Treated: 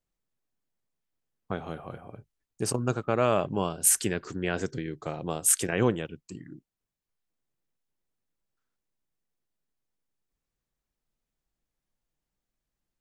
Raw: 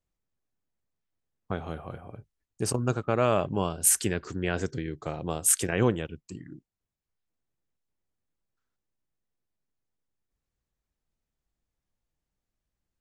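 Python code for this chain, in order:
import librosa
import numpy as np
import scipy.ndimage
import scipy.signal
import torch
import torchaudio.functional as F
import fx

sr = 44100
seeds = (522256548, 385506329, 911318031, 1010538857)

y = fx.peak_eq(x, sr, hz=72.0, db=-11.0, octaves=0.66)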